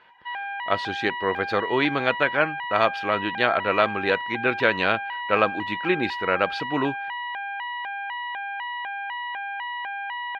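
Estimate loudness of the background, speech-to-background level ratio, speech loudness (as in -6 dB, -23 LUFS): -30.5 LUFS, 6.0 dB, -24.5 LUFS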